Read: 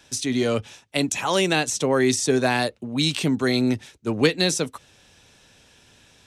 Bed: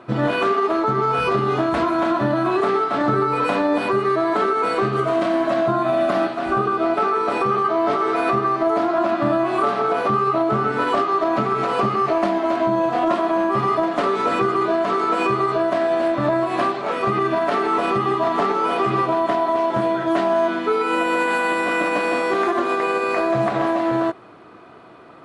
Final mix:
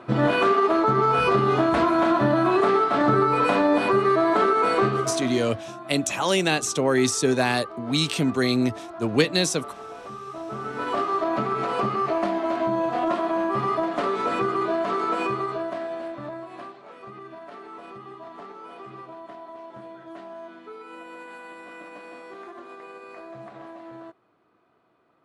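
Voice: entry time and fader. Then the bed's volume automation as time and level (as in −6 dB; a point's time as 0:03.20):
4.95 s, −1.0 dB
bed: 0:04.85 −0.5 dB
0:05.60 −19 dB
0:10.23 −19 dB
0:11.03 −5 dB
0:15.13 −5 dB
0:16.88 −21.5 dB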